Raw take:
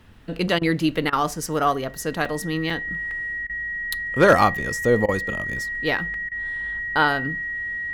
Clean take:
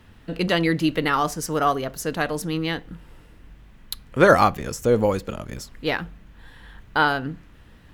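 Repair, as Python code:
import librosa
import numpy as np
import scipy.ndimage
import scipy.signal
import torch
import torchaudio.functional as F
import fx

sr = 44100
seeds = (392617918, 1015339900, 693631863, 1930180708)

y = fx.fix_declip(x, sr, threshold_db=-6.0)
y = fx.notch(y, sr, hz=1900.0, q=30.0)
y = fx.fix_interpolate(y, sr, at_s=(0.6, 2.25, 2.7, 3.11, 6.14), length_ms=2.4)
y = fx.fix_interpolate(y, sr, at_s=(0.59, 1.1, 3.47, 5.06, 6.29), length_ms=24.0)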